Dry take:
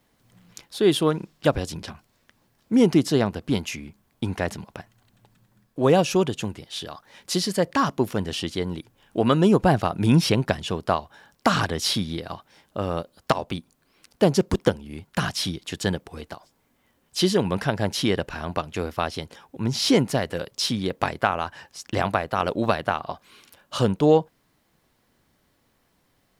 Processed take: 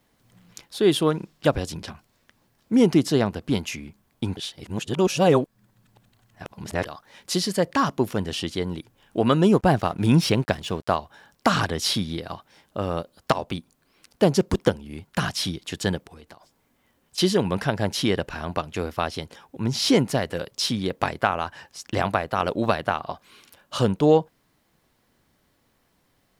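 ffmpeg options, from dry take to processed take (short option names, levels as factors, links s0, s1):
-filter_complex "[0:a]asettb=1/sr,asplit=3[s0][s1][s2];[s0]atrim=end=9.524[s3];[s1]atrim=start=9.52:end=10.96,asetpts=PTS-STARTPTS,afade=t=in:d=0.004:c=qsin,afade=t=out:st=1.436:d=0.004:c=qsin,aeval=exprs='sgn(val(0))*max(abs(val(0))-0.00531,0)':c=same[s4];[s2]atrim=start=10.956[s5];[s3][s4]acrossfade=d=0.004:c1=hsin:c2=qsin[s6];[s6][s5]acrossfade=d=0.004:c1=qsin:c2=hsin,asettb=1/sr,asplit=3[s7][s8][s9];[s7]atrim=end=16.044[s10];[s8]atrim=start=16.04:end=17.18,asetpts=PTS-STARTPTS,afade=t=in:d=0.004:c=qsin,afade=t=out:st=1.136:d=0.004:c=qsin,acompressor=threshold=0.00794:ratio=5:attack=3.2:release=140:knee=1:detection=peak[s11];[s9]atrim=start=17.176[s12];[s10][s11]acrossfade=d=0.004:c1=hsin:c2=qsin[s13];[s13][s12]acrossfade=d=0.004:c1=qsin:c2=hsin,asplit=3[s14][s15][s16];[s14]atrim=end=4.372[s17];[s15]atrim=start=4.368:end=6.852,asetpts=PTS-STARTPTS,areverse[s18];[s16]atrim=start=6.848[s19];[s17][s18]acrossfade=d=0.004:c1=hsin:c2=hsin[s20];[s20][s19]acrossfade=d=0.004:c1=hsin:c2=hsin"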